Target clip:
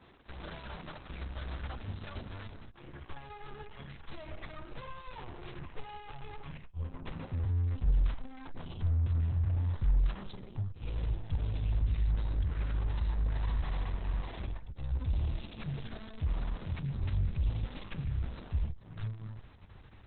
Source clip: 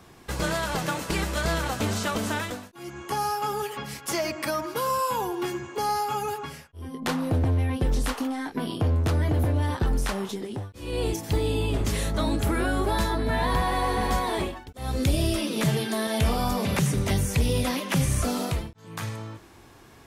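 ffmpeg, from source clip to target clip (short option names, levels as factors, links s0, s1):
-filter_complex "[0:a]asplit=3[s0][s1][s2];[s0]afade=t=out:st=5.06:d=0.02[s3];[s1]equalizer=f=160:t=o:w=0.33:g=6,equalizer=f=500:t=o:w=0.33:g=11,equalizer=f=1000:t=o:w=0.33:g=9,equalizer=f=2500:t=o:w=0.33:g=9,afade=t=in:st=5.06:d=0.02,afade=t=out:st=7.45:d=0.02[s4];[s2]afade=t=in:st=7.45:d=0.02[s5];[s3][s4][s5]amix=inputs=3:normalize=0,aeval=exprs='(tanh(50.1*val(0)+0.65)-tanh(0.65))/50.1':c=same,acrossover=split=260[s6][s7];[s7]acompressor=threshold=0.00501:ratio=1.5[s8];[s6][s8]amix=inputs=2:normalize=0,aexciter=amount=9.2:drive=3.4:freq=11000,bandreject=f=60:t=h:w=6,bandreject=f=120:t=h:w=6,bandreject=f=180:t=h:w=6,bandreject=f=240:t=h:w=6,bandreject=f=300:t=h:w=6,asubboost=boost=7:cutoff=100,volume=0.631" -ar 48000 -c:a libopus -b:a 6k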